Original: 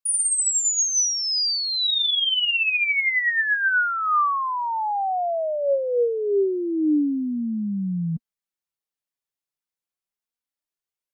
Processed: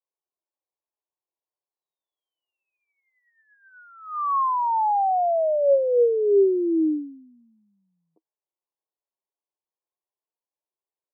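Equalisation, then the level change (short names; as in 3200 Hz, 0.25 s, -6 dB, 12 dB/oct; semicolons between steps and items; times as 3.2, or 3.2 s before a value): Chebyshev band-pass 320–1100 Hz, order 5; +3.5 dB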